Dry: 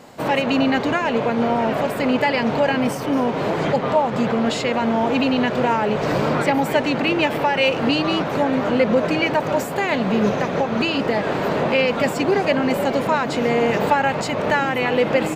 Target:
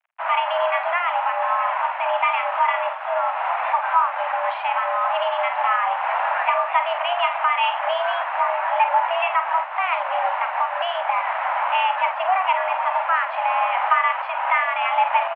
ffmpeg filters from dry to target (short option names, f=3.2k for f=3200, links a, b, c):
-filter_complex "[0:a]aeval=exprs='sgn(val(0))*max(abs(val(0))-0.0158,0)':c=same,asplit=2[a][b];[b]adelay=48,volume=-9dB[c];[a][c]amix=inputs=2:normalize=0,highpass=f=290:t=q:w=0.5412,highpass=f=290:t=q:w=1.307,lowpass=f=2.4k:t=q:w=0.5176,lowpass=f=2.4k:t=q:w=0.7071,lowpass=f=2.4k:t=q:w=1.932,afreqshift=360"